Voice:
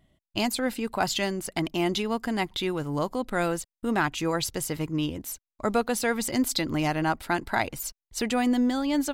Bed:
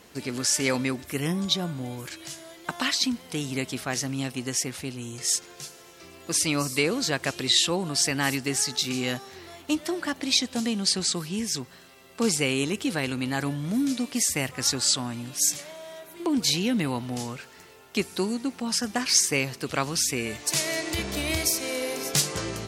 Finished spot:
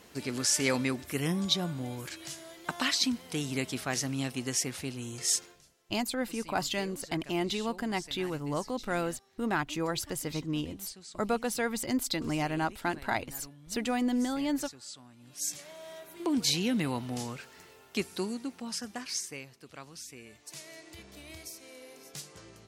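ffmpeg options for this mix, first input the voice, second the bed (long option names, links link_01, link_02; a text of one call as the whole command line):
ffmpeg -i stem1.wav -i stem2.wav -filter_complex "[0:a]adelay=5550,volume=-5dB[link_01];[1:a]volume=15.5dB,afade=type=out:start_time=5.39:duration=0.22:silence=0.105925,afade=type=in:start_time=15.18:duration=0.72:silence=0.11885,afade=type=out:start_time=17.67:duration=1.81:silence=0.158489[link_02];[link_01][link_02]amix=inputs=2:normalize=0" out.wav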